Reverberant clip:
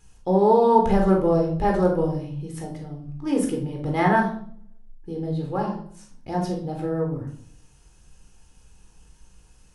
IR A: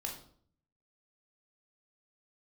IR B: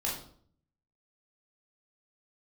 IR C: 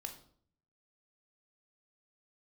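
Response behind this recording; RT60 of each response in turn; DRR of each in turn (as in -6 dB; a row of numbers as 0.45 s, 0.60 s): A; 0.55 s, 0.55 s, 0.55 s; 0.0 dB, -4.5 dB, 4.5 dB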